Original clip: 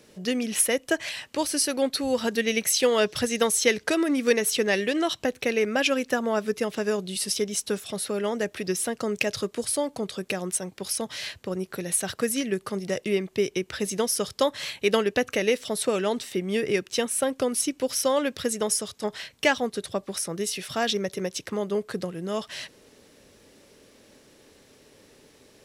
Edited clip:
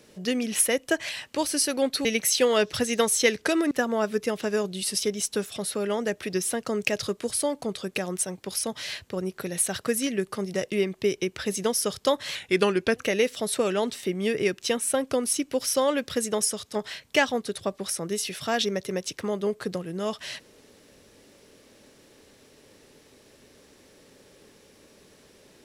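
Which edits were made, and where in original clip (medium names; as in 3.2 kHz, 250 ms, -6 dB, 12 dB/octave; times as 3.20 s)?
2.05–2.47 s: delete
4.13–6.05 s: delete
14.69–15.25 s: speed 91%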